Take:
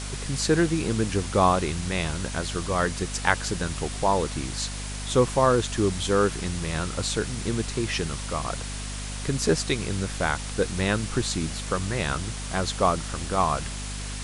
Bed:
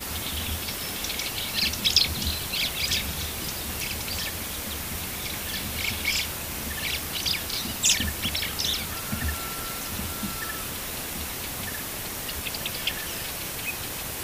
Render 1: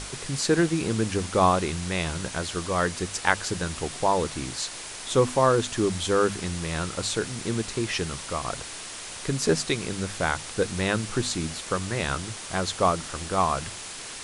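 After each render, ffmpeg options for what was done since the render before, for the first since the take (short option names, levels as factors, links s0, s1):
-af "bandreject=f=50:t=h:w=6,bandreject=f=100:t=h:w=6,bandreject=f=150:t=h:w=6,bandreject=f=200:t=h:w=6,bandreject=f=250:t=h:w=6"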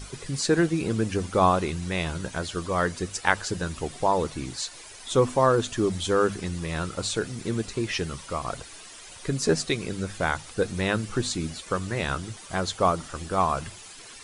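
-af "afftdn=nr=11:nf=-38"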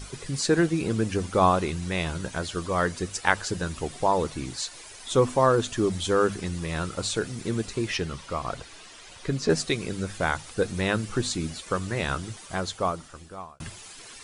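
-filter_complex "[0:a]asettb=1/sr,asplit=3[s0][s1][s2];[s0]atrim=end=7.974[s3];[s1]atrim=start=7.97:end=9.5,asetpts=PTS-STARTPTS,afade=t=in:d=0.004:c=qsin,afade=t=out:st=1.526:d=0.004:c=qsin,acrossover=split=5900[s4][s5];[s5]acompressor=threshold=0.00178:ratio=4:attack=1:release=60[s6];[s4][s6]amix=inputs=2:normalize=0[s7];[s2]atrim=start=9.496[s8];[s3][s7]acrossfade=d=0.004:c1=hsin:c2=qsin[s9];[s9][s8]acrossfade=d=0.004:c1=qsin:c2=hsin,asplit=2[s10][s11];[s10]atrim=end=13.6,asetpts=PTS-STARTPTS,afade=t=out:st=12.34:d=1.26[s12];[s11]atrim=start=13.6,asetpts=PTS-STARTPTS,afade=t=in:d=0.004:c=hsin[s13];[s12][s13]concat=n=2:v=0:a=1"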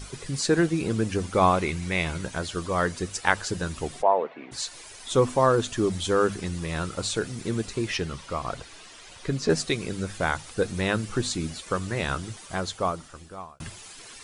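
-filter_complex "[0:a]asettb=1/sr,asplit=3[s0][s1][s2];[s0]atrim=end=1.364[s3];[s1]atrim=start=1.36:end=2.25,asetpts=PTS-STARTPTS,afade=t=in:d=0.004:c=qsin,afade=t=out:st=0.886:d=0.004:c=qsin,equalizer=f=2200:t=o:w=0.26:g=9[s4];[s2]atrim=start=2.246[s5];[s3][s4]acrossfade=d=0.004:c1=hsin:c2=qsin[s6];[s6][s5]acrossfade=d=0.004:c1=qsin:c2=hsin,asplit=3[s7][s8][s9];[s7]afade=t=out:st=4.01:d=0.02[s10];[s8]highpass=f=280:w=0.5412,highpass=f=280:w=1.3066,equalizer=f=320:t=q:w=4:g=-10,equalizer=f=670:t=q:w=4:g=6,equalizer=f=1300:t=q:w=4:g=-4,lowpass=f=2400:w=0.5412,lowpass=f=2400:w=1.3066,afade=t=in:st=4.01:d=0.02,afade=t=out:st=4.51:d=0.02[s11];[s9]afade=t=in:st=4.51:d=0.02[s12];[s10][s11][s12]amix=inputs=3:normalize=0"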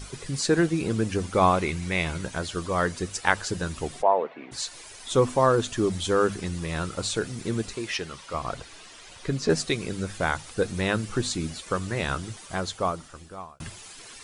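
-filter_complex "[0:a]asettb=1/sr,asplit=3[s0][s1][s2];[s0]atrim=end=7.754[s3];[s1]atrim=start=7.75:end=8.34,asetpts=PTS-STARTPTS,afade=t=in:d=0.004:c=qsin,afade=t=out:st=0.586:d=0.004:c=qsin,lowshelf=f=270:g=-11.5[s4];[s2]atrim=start=8.336[s5];[s3][s4]acrossfade=d=0.004:c1=hsin:c2=qsin[s6];[s6][s5]acrossfade=d=0.004:c1=qsin:c2=hsin"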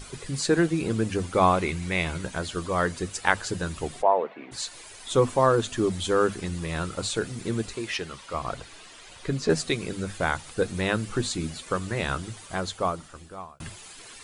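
-af "equalizer=f=5600:t=o:w=0.35:g=-3.5,bandreject=f=50:t=h:w=6,bandreject=f=100:t=h:w=6,bandreject=f=150:t=h:w=6,bandreject=f=200:t=h:w=6,bandreject=f=250:t=h:w=6"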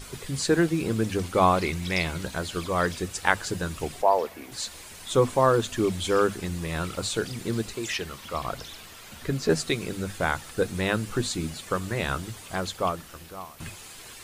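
-filter_complex "[1:a]volume=0.133[s0];[0:a][s0]amix=inputs=2:normalize=0"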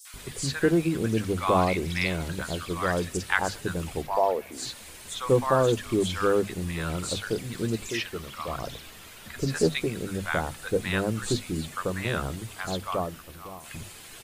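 -filter_complex "[0:a]acrossover=split=960|5600[s0][s1][s2];[s1]adelay=50[s3];[s0]adelay=140[s4];[s4][s3][s2]amix=inputs=3:normalize=0"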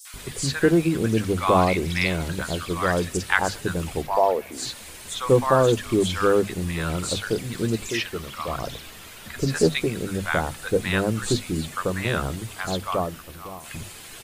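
-af "volume=1.58"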